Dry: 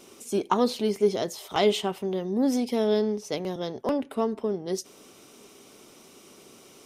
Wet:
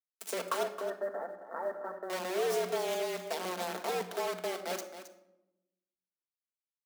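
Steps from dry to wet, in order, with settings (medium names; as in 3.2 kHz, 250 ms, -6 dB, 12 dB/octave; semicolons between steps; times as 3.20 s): compression 2.5:1, threshold -38 dBFS, peak gain reduction 14 dB; bit crusher 6-bit; 0.63–2.10 s: rippled Chebyshev low-pass 1.7 kHz, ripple 6 dB; frequency shift +180 Hz; companded quantiser 8-bit; delay 268 ms -11.5 dB; simulated room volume 3100 m³, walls furnished, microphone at 1.6 m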